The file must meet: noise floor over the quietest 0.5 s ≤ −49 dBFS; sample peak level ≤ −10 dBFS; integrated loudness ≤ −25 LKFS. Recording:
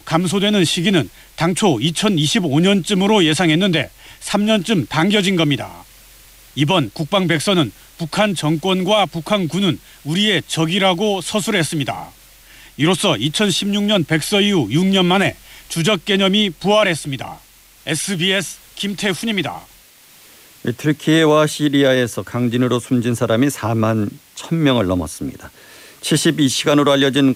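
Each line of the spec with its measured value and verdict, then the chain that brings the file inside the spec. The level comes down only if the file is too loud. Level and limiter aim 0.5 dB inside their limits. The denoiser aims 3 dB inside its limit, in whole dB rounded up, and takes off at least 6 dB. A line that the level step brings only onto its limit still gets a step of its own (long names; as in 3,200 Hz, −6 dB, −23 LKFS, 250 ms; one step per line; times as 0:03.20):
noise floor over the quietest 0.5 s −47 dBFS: out of spec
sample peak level −3.5 dBFS: out of spec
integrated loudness −16.5 LKFS: out of spec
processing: level −9 dB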